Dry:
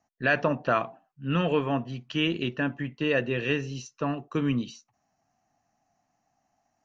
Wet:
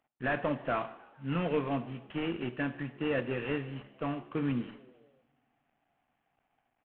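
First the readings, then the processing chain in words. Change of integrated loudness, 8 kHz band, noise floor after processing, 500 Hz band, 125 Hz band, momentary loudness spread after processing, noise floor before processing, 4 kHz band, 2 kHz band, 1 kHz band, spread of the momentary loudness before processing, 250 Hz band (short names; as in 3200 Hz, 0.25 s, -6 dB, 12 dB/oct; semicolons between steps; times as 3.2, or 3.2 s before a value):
-6.5 dB, n/a, -80 dBFS, -5.5 dB, -6.0 dB, 8 LU, -77 dBFS, -11.5 dB, -8.5 dB, -6.0 dB, 7 LU, -5.0 dB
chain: CVSD 16 kbps; frequency-shifting echo 0.148 s, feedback 56%, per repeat +71 Hz, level -23 dB; two-slope reverb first 0.77 s, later 2.5 s, from -20 dB, DRR 13.5 dB; gain -5 dB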